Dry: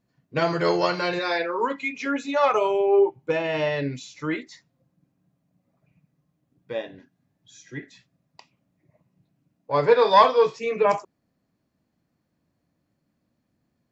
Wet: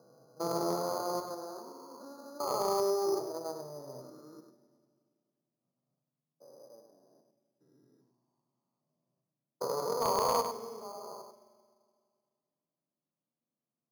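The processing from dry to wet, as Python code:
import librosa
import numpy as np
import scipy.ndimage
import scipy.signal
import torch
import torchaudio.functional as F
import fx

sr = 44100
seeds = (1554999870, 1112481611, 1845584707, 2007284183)

p1 = fx.spec_steps(x, sr, hold_ms=400)
p2 = fx.low_shelf(p1, sr, hz=290.0, db=-7.5)
p3 = fx.hum_notches(p2, sr, base_hz=60, count=7)
p4 = fx.level_steps(p3, sr, step_db=15)
p5 = p3 + (p4 * librosa.db_to_amplitude(0.5))
p6 = fx.cheby_harmonics(p5, sr, harmonics=(3, 7), levels_db=(-12, -37), full_scale_db=-7.5)
p7 = scipy.signal.sosfilt(scipy.signal.cheby1(5, 1.0, [120.0, 1300.0], 'bandpass', fs=sr, output='sos'), p6)
p8 = 10.0 ** (-19.5 / 20.0) * np.tanh(p7 / 10.0 ** (-19.5 / 20.0))
p9 = p8 + 10.0 ** (-7.0 / 20.0) * np.pad(p8, (int(99 * sr / 1000.0), 0))[:len(p8)]
p10 = fx.rev_fdn(p9, sr, rt60_s=2.1, lf_ratio=1.1, hf_ratio=0.95, size_ms=25.0, drr_db=12.0)
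y = np.repeat(scipy.signal.resample_poly(p10, 1, 8), 8)[:len(p10)]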